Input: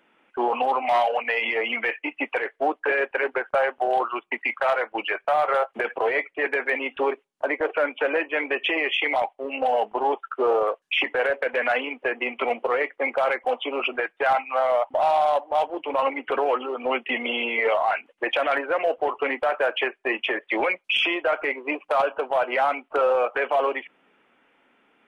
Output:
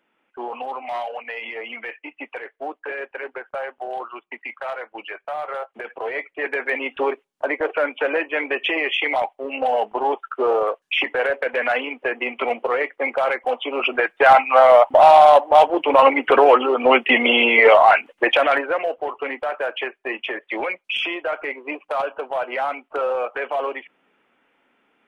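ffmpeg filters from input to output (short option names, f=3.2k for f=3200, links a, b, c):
-af "volume=10.5dB,afade=t=in:st=5.87:d=0.98:silence=0.354813,afade=t=in:st=13.71:d=0.72:silence=0.375837,afade=t=out:st=17.92:d=1:silence=0.237137"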